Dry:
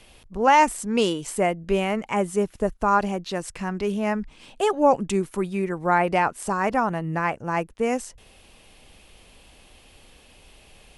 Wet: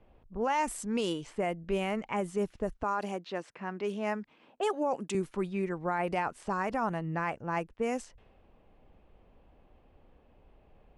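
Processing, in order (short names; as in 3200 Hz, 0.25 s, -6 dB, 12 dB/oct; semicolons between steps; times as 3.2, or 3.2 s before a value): low-pass opened by the level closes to 930 Hz, open at -18.5 dBFS; 2.83–5.15 HPF 240 Hz 12 dB/oct; limiter -14.5 dBFS, peak gain reduction 8.5 dB; gain -6.5 dB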